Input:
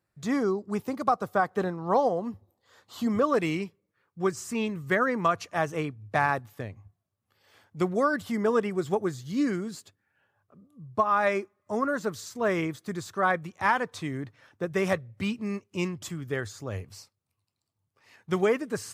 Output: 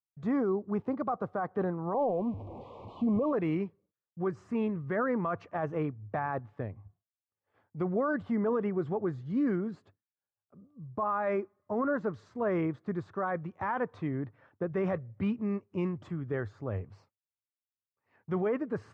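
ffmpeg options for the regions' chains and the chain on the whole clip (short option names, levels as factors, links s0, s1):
-filter_complex "[0:a]asettb=1/sr,asplit=3[s0][s1][s2];[s0]atrim=end=1.944[s3];[s1]atrim=start=1.94:end=3.33,asetpts=PTS-STARTPTS,afade=t=in:d=0.004:c=qsin,afade=t=out:st=1.386:d=0.004:c=qsin,aeval=exprs='val(0)+0.5*0.015*sgn(val(0))':c=same,acrossover=split=2800[s4][s5];[s5]acompressor=threshold=0.00355:ratio=4:attack=1:release=60[s6];[s4][s6]amix=inputs=2:normalize=0,asuperstop=centerf=1600:order=8:qfactor=1.3[s7];[s2]atrim=start=3.326[s8];[s3][s7]acrossfade=d=0.004:c1=hsin:c2=qsin[s9];[s9][s8]acrossfade=d=0.004:c1=qsin:c2=hsin,lowpass=1300,agate=range=0.0224:threshold=0.00141:ratio=3:detection=peak,alimiter=limit=0.075:level=0:latency=1:release=15"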